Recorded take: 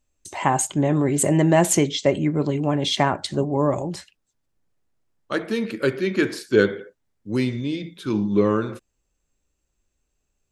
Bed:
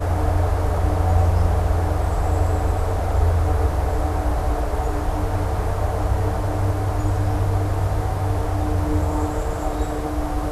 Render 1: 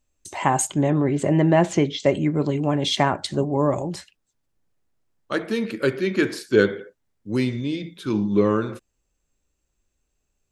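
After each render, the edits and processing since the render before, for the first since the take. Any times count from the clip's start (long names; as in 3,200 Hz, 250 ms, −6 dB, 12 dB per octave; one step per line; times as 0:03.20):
0:00.90–0:02.00: high-frequency loss of the air 160 metres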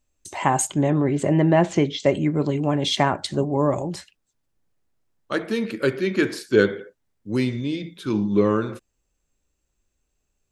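0:01.34–0:01.76: high-frequency loss of the air 50 metres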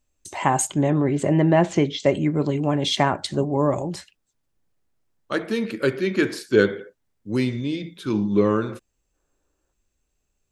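0:09.14–0:09.72: gain on a spectral selection 260–1,800 Hz +8 dB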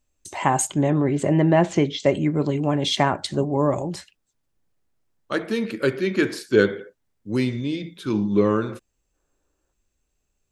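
no processing that can be heard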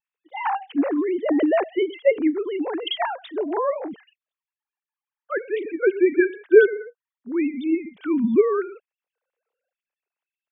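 three sine waves on the formant tracks
pitch vibrato 0.97 Hz 26 cents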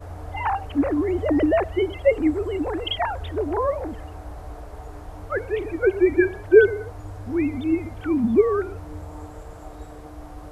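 mix in bed −15.5 dB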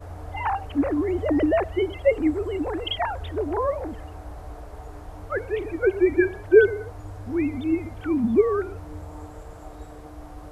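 level −1.5 dB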